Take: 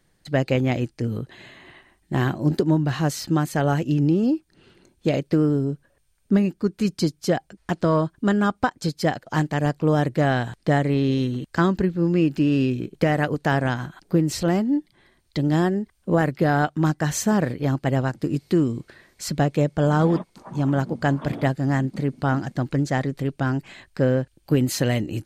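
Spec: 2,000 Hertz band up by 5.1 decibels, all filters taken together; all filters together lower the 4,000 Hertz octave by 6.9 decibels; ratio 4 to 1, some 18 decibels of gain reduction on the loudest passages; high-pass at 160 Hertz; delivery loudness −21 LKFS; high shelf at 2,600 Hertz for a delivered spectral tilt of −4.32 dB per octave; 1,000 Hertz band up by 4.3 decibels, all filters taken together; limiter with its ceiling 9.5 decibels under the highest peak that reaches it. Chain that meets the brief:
high-pass filter 160 Hz
parametric band 1,000 Hz +5.5 dB
parametric band 2,000 Hz +9 dB
high-shelf EQ 2,600 Hz −8.5 dB
parametric band 4,000 Hz −6.5 dB
downward compressor 4 to 1, threshold −36 dBFS
level +18.5 dB
brickwall limiter −8 dBFS

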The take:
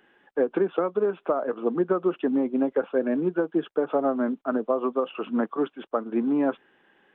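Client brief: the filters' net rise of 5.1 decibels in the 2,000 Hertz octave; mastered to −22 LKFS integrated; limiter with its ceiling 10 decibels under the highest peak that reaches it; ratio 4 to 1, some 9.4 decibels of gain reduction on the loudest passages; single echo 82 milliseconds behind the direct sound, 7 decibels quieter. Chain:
parametric band 2,000 Hz +7.5 dB
downward compressor 4 to 1, threshold −30 dBFS
brickwall limiter −28 dBFS
single-tap delay 82 ms −7 dB
level +15 dB

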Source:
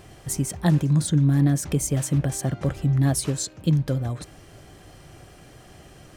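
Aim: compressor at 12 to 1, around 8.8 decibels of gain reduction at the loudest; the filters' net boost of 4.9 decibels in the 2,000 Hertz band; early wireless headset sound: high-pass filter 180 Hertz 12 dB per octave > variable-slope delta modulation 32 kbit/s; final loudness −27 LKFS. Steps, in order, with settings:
parametric band 2,000 Hz +6 dB
downward compressor 12 to 1, threshold −24 dBFS
high-pass filter 180 Hz 12 dB per octave
variable-slope delta modulation 32 kbit/s
level +7 dB

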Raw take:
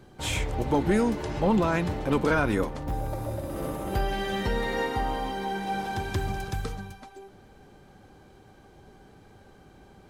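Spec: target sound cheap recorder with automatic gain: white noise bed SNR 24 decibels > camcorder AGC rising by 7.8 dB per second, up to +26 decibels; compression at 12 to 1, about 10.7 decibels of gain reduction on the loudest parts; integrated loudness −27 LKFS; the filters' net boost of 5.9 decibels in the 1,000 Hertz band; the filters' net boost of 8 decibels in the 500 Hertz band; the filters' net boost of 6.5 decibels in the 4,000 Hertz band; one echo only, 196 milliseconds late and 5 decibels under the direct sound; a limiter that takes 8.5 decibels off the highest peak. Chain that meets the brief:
parametric band 500 Hz +8.5 dB
parametric band 1,000 Hz +4 dB
parametric band 4,000 Hz +8 dB
downward compressor 12 to 1, threshold −24 dBFS
brickwall limiter −22.5 dBFS
single-tap delay 196 ms −5 dB
white noise bed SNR 24 dB
camcorder AGC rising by 7.8 dB per second, up to +26 dB
level +4.5 dB

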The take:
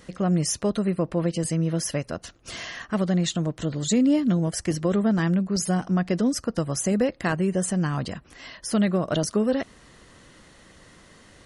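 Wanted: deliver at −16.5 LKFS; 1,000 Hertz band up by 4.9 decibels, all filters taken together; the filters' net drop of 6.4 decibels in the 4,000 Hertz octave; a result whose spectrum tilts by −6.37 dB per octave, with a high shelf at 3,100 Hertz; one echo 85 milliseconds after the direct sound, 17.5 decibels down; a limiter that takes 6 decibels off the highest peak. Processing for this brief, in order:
parametric band 1,000 Hz +7.5 dB
high-shelf EQ 3,100 Hz −5.5 dB
parametric band 4,000 Hz −4.5 dB
brickwall limiter −15.5 dBFS
single-tap delay 85 ms −17.5 dB
level +9.5 dB

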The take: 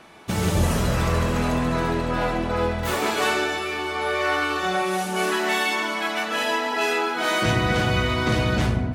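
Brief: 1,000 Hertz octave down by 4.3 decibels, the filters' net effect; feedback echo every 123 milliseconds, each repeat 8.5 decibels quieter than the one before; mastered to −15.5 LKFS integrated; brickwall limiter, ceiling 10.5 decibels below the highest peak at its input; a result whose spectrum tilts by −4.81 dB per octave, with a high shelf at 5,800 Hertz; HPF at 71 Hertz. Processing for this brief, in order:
high-pass filter 71 Hz
parametric band 1,000 Hz −5.5 dB
high-shelf EQ 5,800 Hz −4.5 dB
brickwall limiter −21.5 dBFS
repeating echo 123 ms, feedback 38%, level −8.5 dB
level +13.5 dB

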